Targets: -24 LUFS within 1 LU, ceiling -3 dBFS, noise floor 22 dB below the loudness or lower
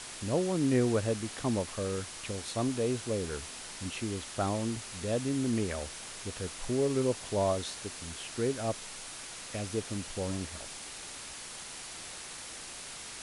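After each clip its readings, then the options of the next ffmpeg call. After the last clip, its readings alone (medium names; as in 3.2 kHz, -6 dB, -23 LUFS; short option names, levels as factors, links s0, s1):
noise floor -44 dBFS; noise floor target -56 dBFS; loudness -34.0 LUFS; peak level -16.5 dBFS; loudness target -24.0 LUFS
-> -af "afftdn=nr=12:nf=-44"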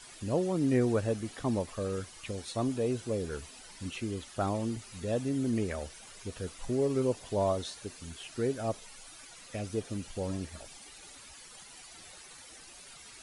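noise floor -51 dBFS; noise floor target -56 dBFS
-> -af "afftdn=nr=6:nf=-51"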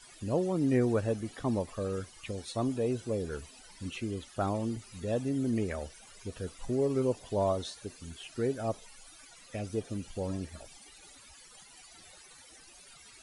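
noise floor -55 dBFS; noise floor target -56 dBFS
-> -af "afftdn=nr=6:nf=-55"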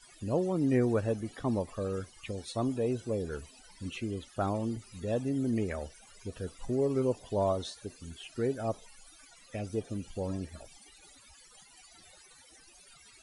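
noise floor -58 dBFS; loudness -33.5 LUFS; peak level -17.0 dBFS; loudness target -24.0 LUFS
-> -af "volume=2.99"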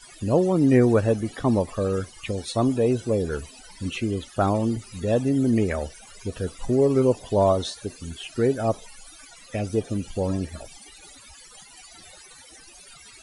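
loudness -24.0 LUFS; peak level -7.5 dBFS; noise floor -48 dBFS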